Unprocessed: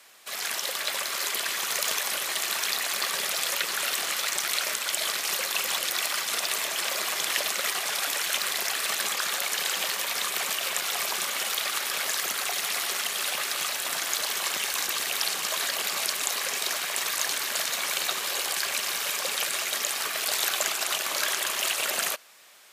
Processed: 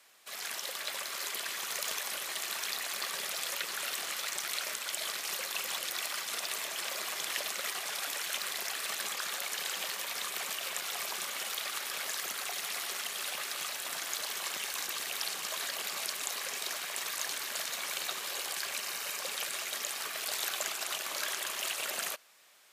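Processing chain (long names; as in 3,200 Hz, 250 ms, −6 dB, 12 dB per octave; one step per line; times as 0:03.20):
0:18.79–0:19.21: notch filter 3,400 Hz, Q 11
level −8 dB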